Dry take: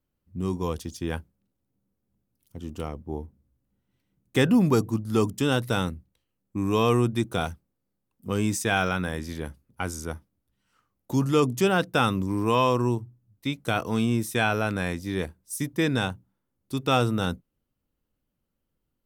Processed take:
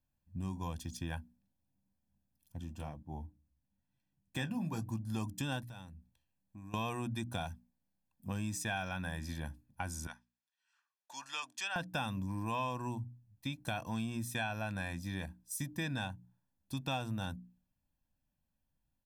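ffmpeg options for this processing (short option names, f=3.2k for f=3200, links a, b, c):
-filter_complex "[0:a]asplit=3[a][b][c];[a]afade=t=out:st=2.63:d=0.02[d];[b]flanger=delay=5.3:depth=9.3:regen=-44:speed=1:shape=triangular,afade=t=in:st=2.63:d=0.02,afade=t=out:st=4.83:d=0.02[e];[c]afade=t=in:st=4.83:d=0.02[f];[d][e][f]amix=inputs=3:normalize=0,asettb=1/sr,asplit=3[g][h][i];[g]atrim=end=5.634[j];[h]atrim=start=5.63:end=6.74,asetpts=PTS-STARTPTS,afade=t=in:d=0.004:c=qsin,afade=t=out:st=1.106:d=0.004:c=qsin,acompressor=threshold=-49dB:ratio=2.5:attack=3.2:release=140:knee=1:detection=peak[k];[i]atrim=start=6.736[l];[j][k]acrossfade=d=0.004:c1=hsin:c2=qsin[m];[m][l]acrossfade=d=0.004:c1=qsin:c2=hsin,asettb=1/sr,asplit=3[n][o][p];[n]atrim=end=10.074[q];[o]atrim=start=10.07:end=11.76,asetpts=PTS-STARTPTS,afade=t=in:d=0.004:c=qsin,afade=t=out:st=1.686:d=0.004:c=qsin,asuperpass=centerf=3000:order=4:qfactor=0.5[r];[p]atrim=start=11.756[s];[q][r]acrossfade=d=0.004:c1=hsin:c2=qsin[t];[t][s]acrossfade=d=0.004:c1=qsin:c2=hsin,bandreject=f=60:t=h:w=6,bandreject=f=120:t=h:w=6,bandreject=f=180:t=h:w=6,bandreject=f=240:t=h:w=6,bandreject=f=300:t=h:w=6,aecho=1:1:1.2:0.81,acompressor=threshold=-29dB:ratio=3,volume=-7dB"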